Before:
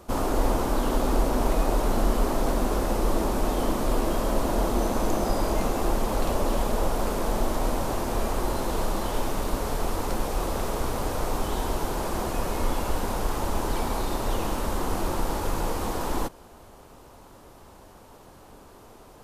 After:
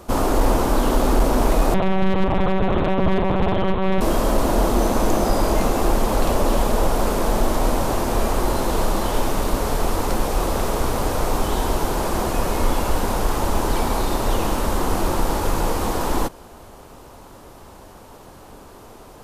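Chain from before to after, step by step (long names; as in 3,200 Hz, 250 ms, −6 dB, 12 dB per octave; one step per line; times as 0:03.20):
0:01.74–0:04.01: one-pitch LPC vocoder at 8 kHz 190 Hz
hard clipping −16 dBFS, distortion −22 dB
level +6.5 dB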